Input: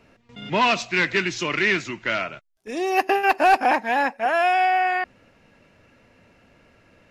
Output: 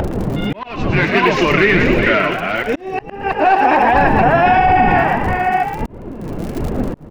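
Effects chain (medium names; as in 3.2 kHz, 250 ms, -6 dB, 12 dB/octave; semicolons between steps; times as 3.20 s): chunks repeated in reverse 469 ms, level -7.5 dB; wind noise 310 Hz -31 dBFS; tape spacing loss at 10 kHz 25 dB; crackle 47 per s -37 dBFS; upward compressor, threshold -27 dBFS; on a send: frequency-shifting echo 113 ms, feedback 50%, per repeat +60 Hz, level -9 dB; on the sum: flange 1.5 Hz, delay 1.3 ms, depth 6.3 ms, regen +42%; slow attack 718 ms; loudness maximiser +20 dB; trim -2.5 dB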